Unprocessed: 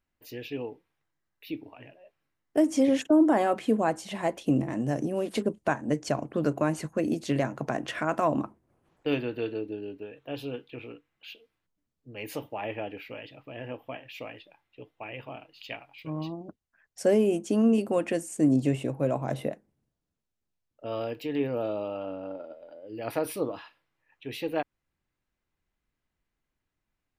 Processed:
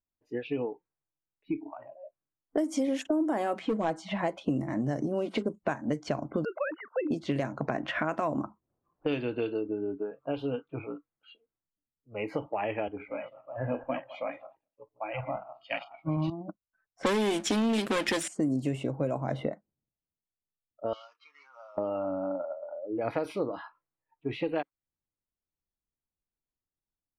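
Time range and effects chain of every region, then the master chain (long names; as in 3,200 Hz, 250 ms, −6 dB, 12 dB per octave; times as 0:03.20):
0:03.60–0:04.19: gain into a clipping stage and back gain 18 dB + high-frequency loss of the air 56 metres + comb filter 6.2 ms, depth 55%
0:06.45–0:07.11: three sine waves on the formant tracks + high-pass filter 890 Hz 6 dB per octave
0:12.88–0:16.30: feedback delay that plays each chunk backwards 106 ms, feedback 43%, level −6.5 dB + multiband upward and downward expander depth 100%
0:17.03–0:18.28: lower of the sound and its delayed copy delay 0.55 ms + meter weighting curve D + leveller curve on the samples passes 2
0:20.93–0:21.78: variable-slope delta modulation 32 kbit/s + Chebyshev high-pass filter 2,700 Hz
whole clip: low-pass that shuts in the quiet parts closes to 1,100 Hz, open at −20 dBFS; noise reduction from a noise print of the clip's start 21 dB; downward compressor 4 to 1, threshold −37 dBFS; level +8.5 dB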